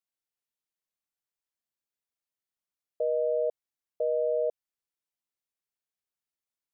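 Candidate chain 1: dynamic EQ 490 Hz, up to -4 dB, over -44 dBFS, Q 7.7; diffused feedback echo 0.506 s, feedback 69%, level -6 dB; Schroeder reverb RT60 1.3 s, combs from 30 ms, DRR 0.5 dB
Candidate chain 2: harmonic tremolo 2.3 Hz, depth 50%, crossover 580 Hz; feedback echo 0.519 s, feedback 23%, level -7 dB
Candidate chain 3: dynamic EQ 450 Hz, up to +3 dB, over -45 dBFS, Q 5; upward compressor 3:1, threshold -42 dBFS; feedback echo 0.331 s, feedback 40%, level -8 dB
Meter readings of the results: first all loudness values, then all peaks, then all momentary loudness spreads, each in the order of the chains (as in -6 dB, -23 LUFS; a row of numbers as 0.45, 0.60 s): -28.5, -33.0, -29.0 LUFS; -16.0, -21.5, -17.5 dBFS; 15, 18, 16 LU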